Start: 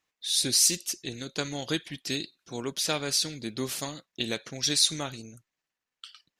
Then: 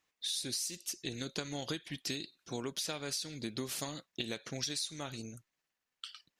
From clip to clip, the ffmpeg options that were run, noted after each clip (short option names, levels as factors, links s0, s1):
-af "acompressor=threshold=0.02:ratio=16"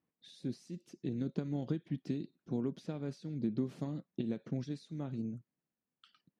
-af "bandpass=f=190:t=q:w=1.5:csg=0,volume=2.99"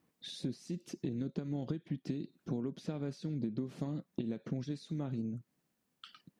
-af "acompressor=threshold=0.00447:ratio=4,volume=3.55"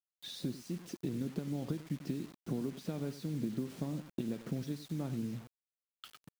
-af "aecho=1:1:96:0.188,acrusher=bits=8:mix=0:aa=0.000001"